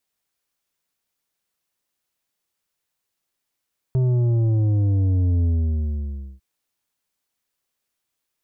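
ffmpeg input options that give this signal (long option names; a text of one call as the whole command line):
ffmpeg -f lavfi -i "aevalsrc='0.141*clip((2.45-t)/0.96,0,1)*tanh(2.51*sin(2*PI*130*2.45/log(65/130)*(exp(log(65/130)*t/2.45)-1)))/tanh(2.51)':duration=2.45:sample_rate=44100" out.wav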